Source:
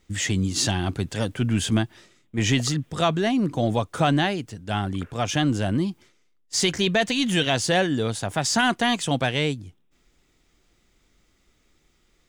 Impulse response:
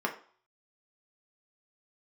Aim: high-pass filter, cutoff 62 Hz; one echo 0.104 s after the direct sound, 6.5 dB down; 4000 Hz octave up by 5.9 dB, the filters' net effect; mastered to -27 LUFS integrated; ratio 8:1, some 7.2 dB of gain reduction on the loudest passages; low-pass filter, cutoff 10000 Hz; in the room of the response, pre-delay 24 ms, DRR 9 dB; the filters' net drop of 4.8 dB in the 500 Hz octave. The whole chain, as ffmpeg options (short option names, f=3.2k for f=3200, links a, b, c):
-filter_complex "[0:a]highpass=62,lowpass=10k,equalizer=f=500:t=o:g=-7,equalizer=f=4k:t=o:g=8,acompressor=threshold=-23dB:ratio=8,aecho=1:1:104:0.473,asplit=2[a][b];[1:a]atrim=start_sample=2205,adelay=24[c];[b][c]afir=irnorm=-1:irlink=0,volume=-17dB[d];[a][d]amix=inputs=2:normalize=0,volume=-0.5dB"